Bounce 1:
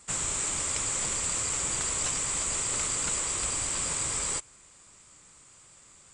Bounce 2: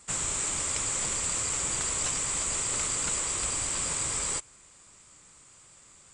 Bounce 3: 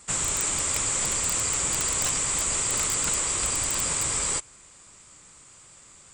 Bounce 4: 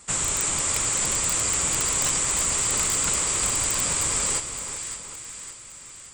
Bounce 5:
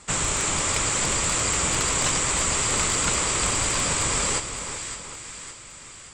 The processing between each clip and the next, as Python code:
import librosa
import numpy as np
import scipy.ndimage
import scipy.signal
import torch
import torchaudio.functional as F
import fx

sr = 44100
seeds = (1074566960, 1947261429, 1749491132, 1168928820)

y1 = x
y2 = (np.mod(10.0 ** (19.0 / 20.0) * y1 + 1.0, 2.0) - 1.0) / 10.0 ** (19.0 / 20.0)
y2 = F.gain(torch.from_numpy(y2), 4.0).numpy()
y3 = fx.echo_split(y2, sr, split_hz=1400.0, low_ms=382, high_ms=564, feedback_pct=52, wet_db=-9.0)
y3 = F.gain(torch.from_numpy(y3), 1.5).numpy()
y4 = fx.air_absorb(y3, sr, metres=67.0)
y4 = F.gain(torch.from_numpy(y4), 5.0).numpy()